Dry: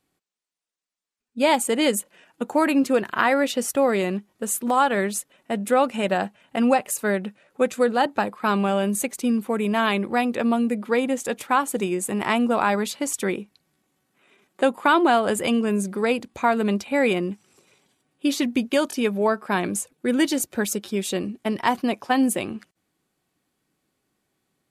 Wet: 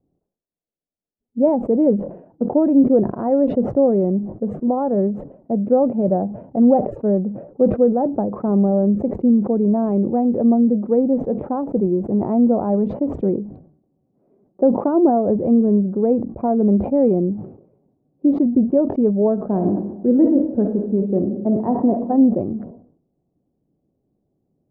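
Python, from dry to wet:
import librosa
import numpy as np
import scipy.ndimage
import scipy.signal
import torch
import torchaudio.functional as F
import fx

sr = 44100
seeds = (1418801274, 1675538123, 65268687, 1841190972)

y = fx.reverb_throw(x, sr, start_s=19.35, length_s=2.73, rt60_s=1.1, drr_db=5.5)
y = scipy.signal.sosfilt(scipy.signal.cheby1(3, 1.0, 650.0, 'lowpass', fs=sr, output='sos'), y)
y = fx.low_shelf(y, sr, hz=490.0, db=10.0)
y = fx.sustainer(y, sr, db_per_s=97.0)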